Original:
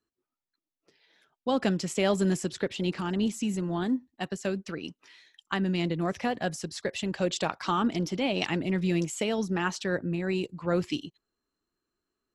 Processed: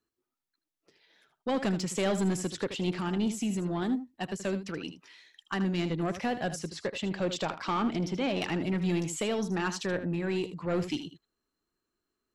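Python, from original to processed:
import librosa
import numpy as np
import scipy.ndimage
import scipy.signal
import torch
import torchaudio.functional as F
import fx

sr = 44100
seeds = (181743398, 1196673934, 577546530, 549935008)

y = fx.high_shelf(x, sr, hz=7100.0, db=-12.0, at=(6.59, 8.55))
y = 10.0 ** (-22.5 / 20.0) * np.tanh(y / 10.0 ** (-22.5 / 20.0))
y = y + 10.0 ** (-11.5 / 20.0) * np.pad(y, (int(78 * sr / 1000.0), 0))[:len(y)]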